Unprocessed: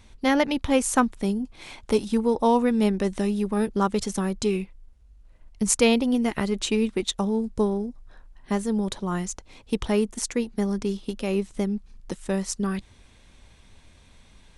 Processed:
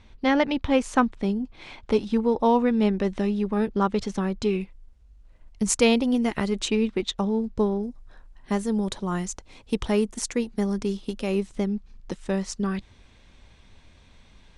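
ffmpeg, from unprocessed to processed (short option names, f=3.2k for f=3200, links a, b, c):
-af "asetnsamples=n=441:p=0,asendcmd='4.61 lowpass f 8600;6.68 lowpass f 4700;7.83 lowpass f 10000;11.55 lowpass f 5900',lowpass=4.2k"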